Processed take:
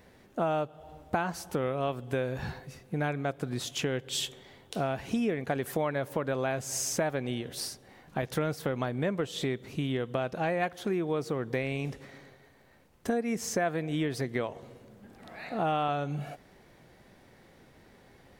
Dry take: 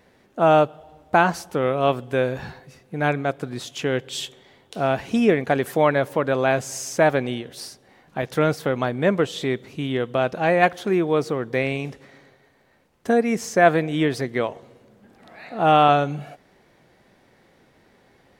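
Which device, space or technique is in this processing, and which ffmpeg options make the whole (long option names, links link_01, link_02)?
ASMR close-microphone chain: -af "lowshelf=frequency=120:gain=7.5,acompressor=threshold=-27dB:ratio=4,highshelf=frequency=8700:gain=5.5,volume=-1.5dB"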